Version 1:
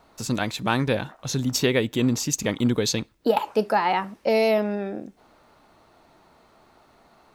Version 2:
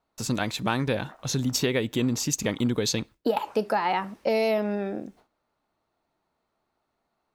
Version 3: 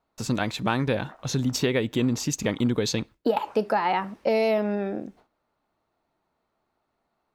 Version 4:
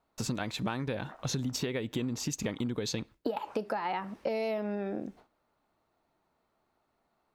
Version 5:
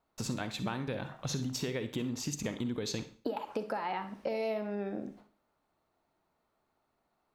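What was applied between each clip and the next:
noise gate with hold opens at −43 dBFS; downward compressor 2.5 to 1, threshold −22 dBFS, peak gain reduction 5.5 dB
high-shelf EQ 5,300 Hz −7.5 dB; level +1.5 dB
downward compressor, threshold −30 dBFS, peak gain reduction 12 dB
convolution reverb RT60 0.40 s, pre-delay 42 ms, DRR 10 dB; level −2.5 dB

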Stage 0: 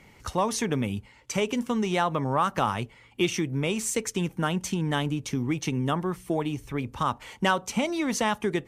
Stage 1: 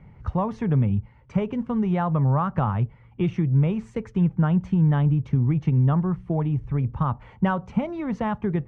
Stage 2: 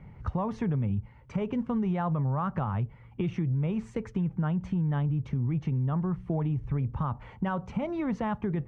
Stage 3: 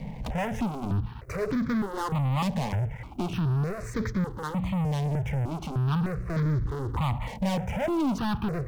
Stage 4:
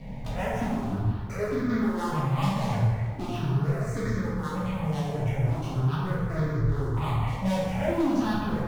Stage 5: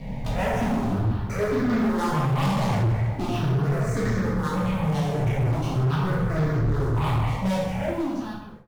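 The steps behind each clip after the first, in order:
low-pass filter 1,300 Hz 12 dB per octave; low shelf with overshoot 210 Hz +9.5 dB, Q 1.5
brickwall limiter −18.5 dBFS, peak gain reduction 7.5 dB; downward compressor 2.5 to 1, threshold −27 dBFS, peak gain reduction 4.5 dB
leveller curve on the samples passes 5; step-sequenced phaser 3.3 Hz 360–2,800 Hz; level −2.5 dB
dense smooth reverb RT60 1.5 s, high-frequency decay 0.65×, DRR −7 dB; level −6.5 dB
fade-out on the ending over 1.55 s; hard clipping −24.5 dBFS, distortion −12 dB; level +5.5 dB

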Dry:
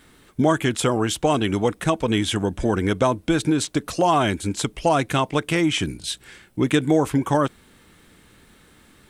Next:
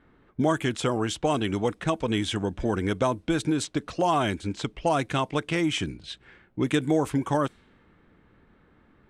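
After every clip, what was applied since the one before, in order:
low-pass that shuts in the quiet parts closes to 1,500 Hz, open at −15.5 dBFS
level −5 dB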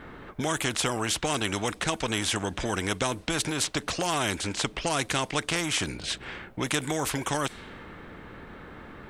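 in parallel at −1 dB: downward compressor, threshold −31 dBFS, peak gain reduction 12.5 dB
on the sum: every bin compressed towards the loudest bin 2 to 1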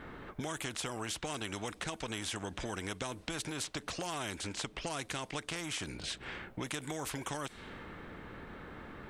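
downward compressor 3 to 1, threshold −34 dBFS, peak gain reduction 9.5 dB
level −3.5 dB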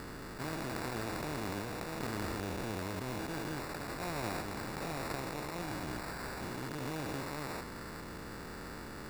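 spectrum averaged block by block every 400 ms
decimation without filtering 14×
level +4.5 dB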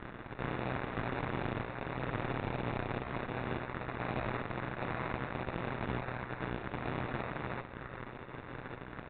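ring modulation 62 Hz
harmonic generator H 8 −9 dB, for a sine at −23 dBFS
downsampling to 8,000 Hz

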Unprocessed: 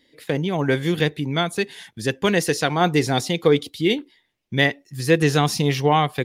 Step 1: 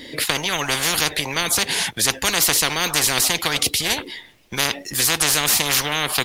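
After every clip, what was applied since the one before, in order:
every bin compressed towards the loudest bin 10 to 1
level +3 dB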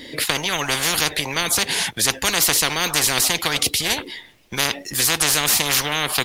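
no processing that can be heard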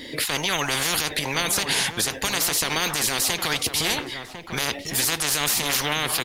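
brickwall limiter −12 dBFS, peak gain reduction 10.5 dB
slap from a distant wall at 180 metres, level −7 dB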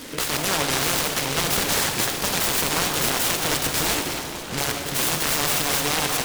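dense smooth reverb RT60 3.9 s, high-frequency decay 0.55×, DRR 2 dB
short delay modulated by noise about 1,900 Hz, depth 0.14 ms

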